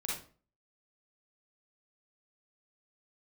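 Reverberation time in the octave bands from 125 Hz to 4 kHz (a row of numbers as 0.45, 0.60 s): 0.50, 0.45, 0.45, 0.40, 0.35, 0.30 s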